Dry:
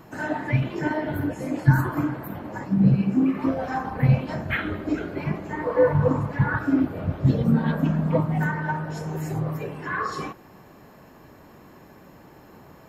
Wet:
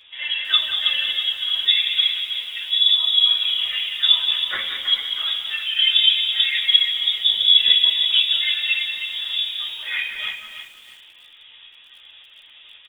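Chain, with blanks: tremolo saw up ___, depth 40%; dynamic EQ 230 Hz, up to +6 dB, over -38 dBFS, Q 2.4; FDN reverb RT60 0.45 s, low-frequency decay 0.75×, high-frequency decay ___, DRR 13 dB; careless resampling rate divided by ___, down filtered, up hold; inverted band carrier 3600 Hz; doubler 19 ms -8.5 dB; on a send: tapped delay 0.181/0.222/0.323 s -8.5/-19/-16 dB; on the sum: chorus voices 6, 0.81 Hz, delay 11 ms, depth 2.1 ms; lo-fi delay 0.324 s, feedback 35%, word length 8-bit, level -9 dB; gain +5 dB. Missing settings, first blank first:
1.8 Hz, 0.5×, 3×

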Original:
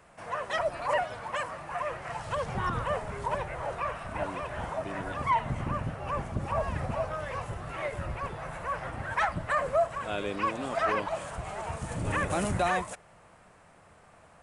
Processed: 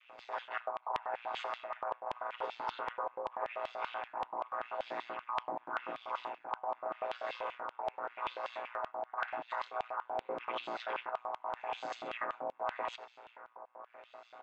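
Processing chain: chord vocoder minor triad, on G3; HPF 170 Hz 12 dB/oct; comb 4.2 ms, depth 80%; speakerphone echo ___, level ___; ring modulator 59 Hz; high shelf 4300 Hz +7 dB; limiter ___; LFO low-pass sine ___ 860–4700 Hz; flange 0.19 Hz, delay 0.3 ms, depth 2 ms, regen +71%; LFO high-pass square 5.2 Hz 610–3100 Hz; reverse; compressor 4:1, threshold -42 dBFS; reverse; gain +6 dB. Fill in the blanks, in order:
90 ms, -12 dB, -21 dBFS, 0.86 Hz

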